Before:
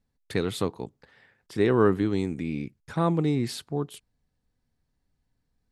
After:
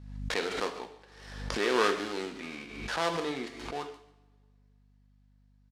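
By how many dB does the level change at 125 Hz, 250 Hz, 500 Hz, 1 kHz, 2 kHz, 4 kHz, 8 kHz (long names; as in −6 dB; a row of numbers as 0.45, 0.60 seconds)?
−15.5, −11.5, −5.5, 0.0, +4.0, +3.5, +0.5 decibels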